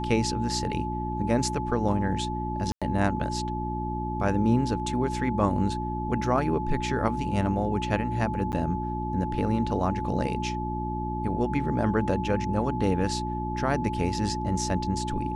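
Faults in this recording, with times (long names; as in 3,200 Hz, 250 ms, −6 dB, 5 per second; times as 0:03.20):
mains hum 60 Hz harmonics 6 −32 dBFS
whistle 860 Hz −32 dBFS
0:02.72–0:02.82: drop-out 96 ms
0:08.52–0:08.53: drop-out 9 ms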